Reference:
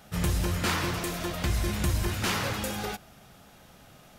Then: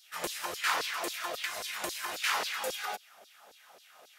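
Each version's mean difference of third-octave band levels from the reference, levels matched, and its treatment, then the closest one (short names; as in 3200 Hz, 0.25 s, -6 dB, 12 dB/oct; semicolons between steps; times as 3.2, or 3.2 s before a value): 10.5 dB: LFO high-pass saw down 3.7 Hz 420–4900 Hz; gain -3 dB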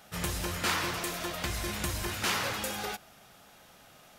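3.0 dB: low shelf 310 Hz -10.5 dB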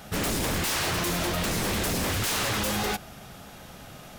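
5.0 dB: wavefolder -31 dBFS; gain +8.5 dB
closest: second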